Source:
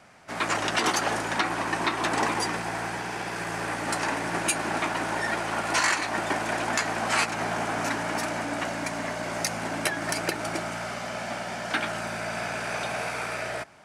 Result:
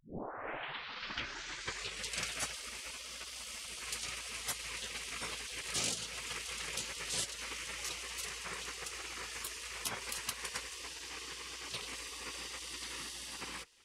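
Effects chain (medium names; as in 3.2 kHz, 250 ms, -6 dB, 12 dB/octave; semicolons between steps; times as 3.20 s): tape start-up on the opening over 2.14 s; spectral gate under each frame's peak -15 dB weak; trim -2.5 dB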